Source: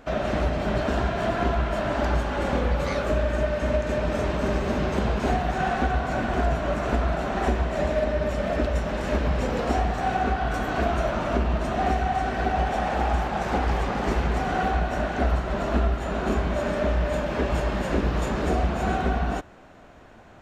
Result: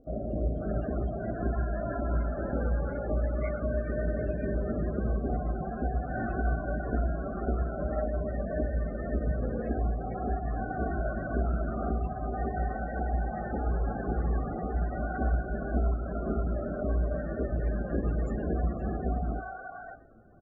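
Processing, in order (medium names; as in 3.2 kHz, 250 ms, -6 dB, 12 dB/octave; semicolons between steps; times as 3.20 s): peaking EQ 920 Hz -10 dB 0.24 oct; feedback comb 56 Hz, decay 0.52 s, harmonics all, mix 60%; loudest bins only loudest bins 32; three bands offset in time lows, highs, mids 40/550 ms, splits 700/3900 Hz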